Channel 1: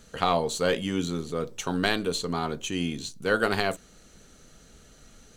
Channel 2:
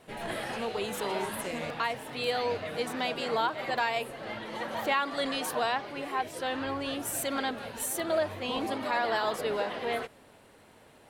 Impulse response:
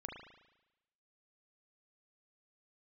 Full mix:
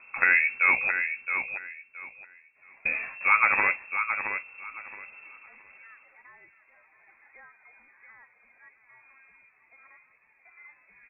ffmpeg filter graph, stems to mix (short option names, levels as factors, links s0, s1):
-filter_complex "[0:a]equalizer=f=4800:t=o:w=0.5:g=-8.5,volume=1.41,asplit=3[s0][s1][s2];[s0]atrim=end=0.91,asetpts=PTS-STARTPTS,afade=t=out:st=0.906:d=0.004:c=hsin[s3];[s1]atrim=start=0.91:end=2.85,asetpts=PTS-STARTPTS,volume=0[s4];[s2]atrim=start=2.85,asetpts=PTS-STARTPTS,afade=t=in:d=0.004:c=hsin[s5];[s3][s4][s5]concat=n=3:v=0:a=1,asplit=3[s6][s7][s8];[s7]volume=0.422[s9];[1:a]adelay=1800,volume=0.531,asplit=2[s10][s11];[s11]volume=0.119[s12];[s8]apad=whole_len=568690[s13];[s10][s13]sidechaingate=range=0.0251:threshold=0.0112:ratio=16:detection=peak[s14];[s9][s12]amix=inputs=2:normalize=0,aecho=0:1:670|1340|2010|2680:1|0.22|0.0484|0.0106[s15];[s6][s14][s15]amix=inputs=3:normalize=0,lowpass=f=2300:t=q:w=0.5098,lowpass=f=2300:t=q:w=0.6013,lowpass=f=2300:t=q:w=0.9,lowpass=f=2300:t=q:w=2.563,afreqshift=-2700"